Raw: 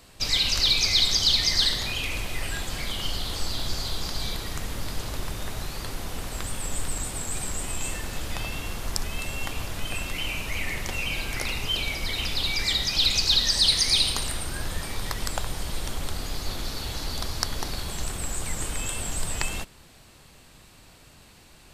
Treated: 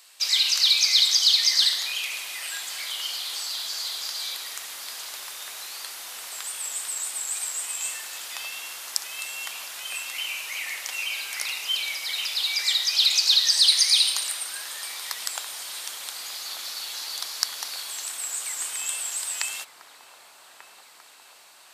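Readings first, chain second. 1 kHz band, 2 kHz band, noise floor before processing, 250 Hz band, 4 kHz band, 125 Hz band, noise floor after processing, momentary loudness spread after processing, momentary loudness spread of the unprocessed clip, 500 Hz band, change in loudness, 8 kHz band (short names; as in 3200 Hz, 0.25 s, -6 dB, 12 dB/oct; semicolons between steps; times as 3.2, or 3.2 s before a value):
-4.5 dB, 0.0 dB, -52 dBFS, under -20 dB, +2.5 dB, under -35 dB, -51 dBFS, 17 LU, 14 LU, -12.5 dB, +2.5 dB, +4.0 dB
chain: HPF 950 Hz 12 dB/oct; high shelf 2500 Hz +9 dB; on a send: dark delay 1.19 s, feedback 69%, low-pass 1200 Hz, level -7.5 dB; on the sum: gain -4 dB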